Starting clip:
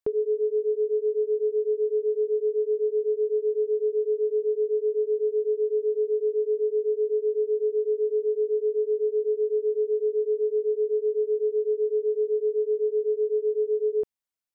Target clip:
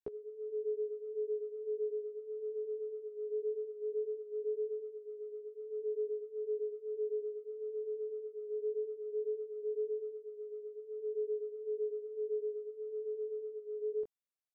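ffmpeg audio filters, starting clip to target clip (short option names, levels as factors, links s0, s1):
-af "acompressor=threshold=0.0562:ratio=6,flanger=delay=15:depth=7.8:speed=0.19,volume=0.447"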